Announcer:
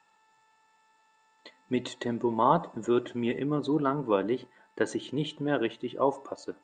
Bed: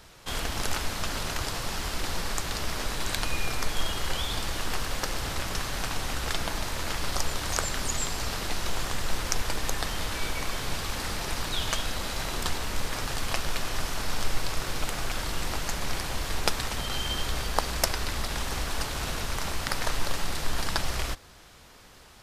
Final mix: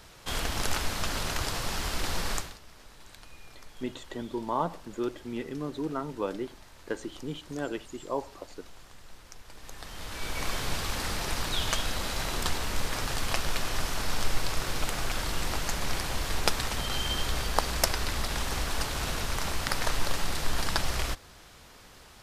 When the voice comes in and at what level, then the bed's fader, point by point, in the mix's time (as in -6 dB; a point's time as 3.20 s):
2.10 s, -6.0 dB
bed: 2.36 s 0 dB
2.60 s -21 dB
9.43 s -21 dB
10.46 s 0 dB